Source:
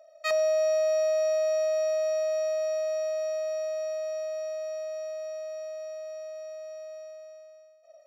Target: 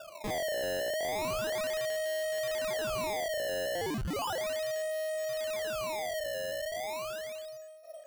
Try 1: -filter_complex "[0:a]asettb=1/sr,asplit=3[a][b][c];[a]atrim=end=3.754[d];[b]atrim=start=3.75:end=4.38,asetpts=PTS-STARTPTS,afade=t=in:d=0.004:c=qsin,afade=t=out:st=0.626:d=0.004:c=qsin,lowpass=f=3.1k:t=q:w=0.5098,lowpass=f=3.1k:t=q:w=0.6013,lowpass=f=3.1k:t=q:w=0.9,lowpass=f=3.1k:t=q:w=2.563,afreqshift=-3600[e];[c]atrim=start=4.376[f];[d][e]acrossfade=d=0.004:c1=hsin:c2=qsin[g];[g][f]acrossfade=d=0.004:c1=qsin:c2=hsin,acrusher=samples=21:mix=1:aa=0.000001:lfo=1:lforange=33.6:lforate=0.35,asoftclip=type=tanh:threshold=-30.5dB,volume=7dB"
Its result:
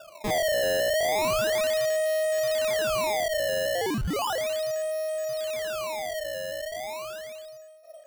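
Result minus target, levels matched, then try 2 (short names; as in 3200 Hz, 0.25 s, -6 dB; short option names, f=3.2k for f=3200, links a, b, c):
soft clip: distortion -5 dB
-filter_complex "[0:a]asettb=1/sr,asplit=3[a][b][c];[a]atrim=end=3.754[d];[b]atrim=start=3.75:end=4.38,asetpts=PTS-STARTPTS,afade=t=in:d=0.004:c=qsin,afade=t=out:st=0.626:d=0.004:c=qsin,lowpass=f=3.1k:t=q:w=0.5098,lowpass=f=3.1k:t=q:w=0.6013,lowpass=f=3.1k:t=q:w=0.9,lowpass=f=3.1k:t=q:w=2.563,afreqshift=-3600[e];[c]atrim=start=4.376[f];[d][e]acrossfade=d=0.004:c1=hsin:c2=qsin[g];[g][f]acrossfade=d=0.004:c1=qsin:c2=hsin,acrusher=samples=21:mix=1:aa=0.000001:lfo=1:lforange=33.6:lforate=0.35,asoftclip=type=tanh:threshold=-39.5dB,volume=7dB"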